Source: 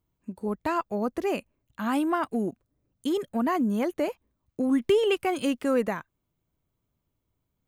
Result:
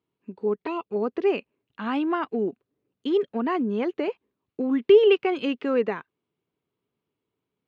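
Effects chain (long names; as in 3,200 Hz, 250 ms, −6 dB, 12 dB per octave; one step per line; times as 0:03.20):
0:00.54–0:00.96: flanger swept by the level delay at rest 6.5 ms, full sweep at −25 dBFS
loudspeaker in its box 190–4,200 Hz, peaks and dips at 420 Hz +9 dB, 610 Hz −5 dB, 2,700 Hz +4 dB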